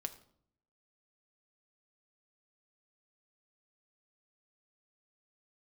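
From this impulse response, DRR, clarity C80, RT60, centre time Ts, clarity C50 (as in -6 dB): 7.0 dB, 17.0 dB, 0.60 s, 6 ms, 14.5 dB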